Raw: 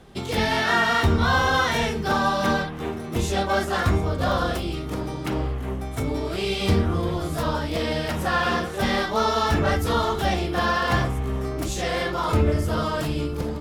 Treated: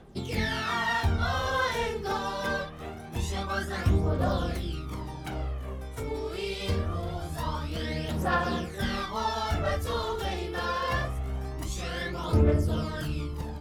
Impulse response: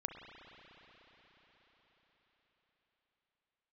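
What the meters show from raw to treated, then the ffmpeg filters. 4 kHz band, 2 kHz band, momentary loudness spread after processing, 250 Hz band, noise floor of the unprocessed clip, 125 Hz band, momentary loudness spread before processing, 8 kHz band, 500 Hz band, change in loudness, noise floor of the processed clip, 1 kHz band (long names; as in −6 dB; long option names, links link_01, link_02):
−7.5 dB, −7.5 dB, 9 LU, −7.5 dB, −32 dBFS, −4.5 dB, 8 LU, −7.5 dB, −7.0 dB, −6.5 dB, −40 dBFS, −7.5 dB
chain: -af "aphaser=in_gain=1:out_gain=1:delay=2.4:decay=0.58:speed=0.24:type=triangular,volume=-9dB"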